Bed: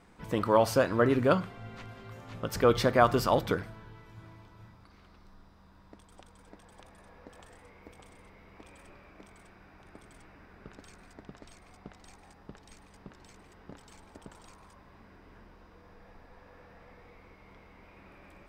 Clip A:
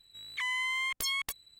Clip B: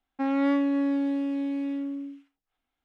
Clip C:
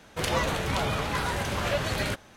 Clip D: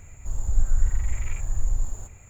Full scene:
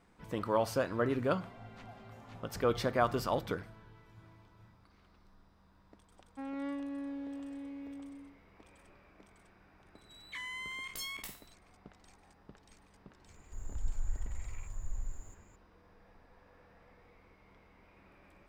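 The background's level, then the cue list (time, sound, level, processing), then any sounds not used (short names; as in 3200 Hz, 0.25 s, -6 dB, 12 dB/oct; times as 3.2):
bed -7 dB
1.1 add C -18 dB + double band-pass 410 Hz, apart 1.6 oct
6.18 add B -15 dB
9.95 add A -10 dB + spectral trails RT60 0.41 s
13.27 add D -14.5 dB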